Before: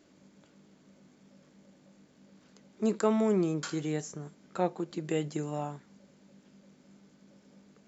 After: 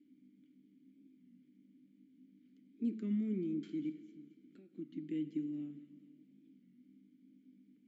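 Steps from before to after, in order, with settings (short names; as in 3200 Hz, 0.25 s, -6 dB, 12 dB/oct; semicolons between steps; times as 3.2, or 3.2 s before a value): resonant low shelf 410 Hz +9 dB, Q 1.5; 3.89–4.74 compressor 6:1, threshold -38 dBFS, peak gain reduction 18.5 dB; vowel filter i; thin delay 0.225 s, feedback 54%, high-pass 1800 Hz, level -16.5 dB; plate-style reverb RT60 2.2 s, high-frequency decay 0.85×, DRR 11.5 dB; record warp 33 1/3 rpm, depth 100 cents; gain -6 dB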